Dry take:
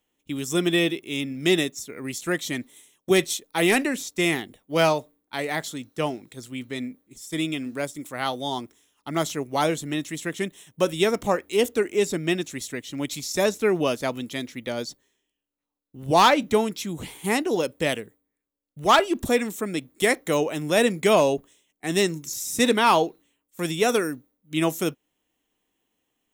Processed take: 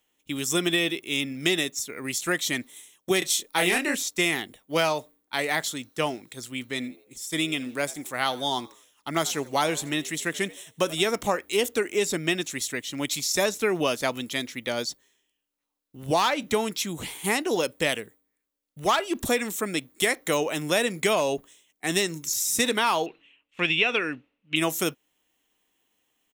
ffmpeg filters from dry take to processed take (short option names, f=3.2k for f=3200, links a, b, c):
-filter_complex "[0:a]asettb=1/sr,asplit=3[a][b][c];[a]atrim=end=3.194[d];[b]atrim=start=3.19:end=3.95,asetpts=PTS-STARTPTS,afade=t=in:d=0.004:c=qsin,afade=t=out:st=0.756:d=0.004:c=qsin,asplit=2[e][f];[f]adelay=28,volume=-3.5dB[g];[e][g]amix=inputs=2:normalize=0,atrim=end_sample=33516[h];[c]atrim=start=3.946[i];[d][h]acrossfade=d=0.004:c1=hsin:c2=qsin[j];[j][i]acrossfade=d=0.004:c1=qsin:c2=hsin,asplit=3[k][l][m];[k]afade=t=out:st=6.79:d=0.02[n];[l]asplit=4[o][p][q][r];[p]adelay=83,afreqshift=88,volume=-22dB[s];[q]adelay=166,afreqshift=176,volume=-30.2dB[t];[r]adelay=249,afreqshift=264,volume=-38.4dB[u];[o][s][t][u]amix=inputs=4:normalize=0,afade=t=in:st=6.79:d=0.02,afade=t=out:st=11.06:d=0.02[v];[m]afade=t=in:st=11.06:d=0.02[w];[n][v][w]amix=inputs=3:normalize=0,asettb=1/sr,asplit=3[x][y][z];[x]atrim=end=23.064[aa];[y]atrim=start=23.06:end=24.56,asetpts=PTS-STARTPTS,afade=t=in:d=0.004:c=qsin,afade=t=out:st=1.496:d=0.004:c=qsin,lowpass=f=2.7k:t=q:w=5.5[ab];[z]atrim=start=24.556[ac];[aa][ab]acrossfade=d=0.004:c1=hsin:c2=qsin[ad];[ad][ac]acrossfade=d=0.004:c1=qsin:c2=hsin,tiltshelf=f=670:g=-4,acompressor=threshold=-20dB:ratio=10,volume=1dB"